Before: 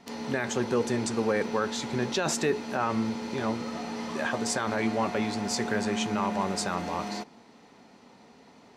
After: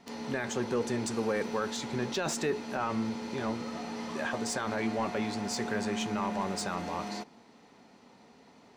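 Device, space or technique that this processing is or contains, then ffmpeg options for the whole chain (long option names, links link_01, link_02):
saturation between pre-emphasis and de-emphasis: -filter_complex "[0:a]asettb=1/sr,asplit=3[link_01][link_02][link_03];[link_01]atrim=end=1.074[link_04];[link_02]atrim=start=1.07:end=1.77,asetpts=PTS-STARTPTS,afade=type=in:duration=0.004:curve=qsin,afade=type=out:start_time=0.696:duration=0.004:curve=qsin,highshelf=frequency=8700:gain=6.5[link_05];[link_03]atrim=start=1.766[link_06];[link_04][link_05]acrossfade=duration=0.004:curve1=hsin:curve2=qsin[link_07];[link_07][link_06]acrossfade=duration=0.004:curve1=qsin:curve2=hsin,highshelf=frequency=2200:gain=9,asoftclip=type=tanh:threshold=-16dB,highshelf=frequency=2200:gain=-9,volume=-3dB"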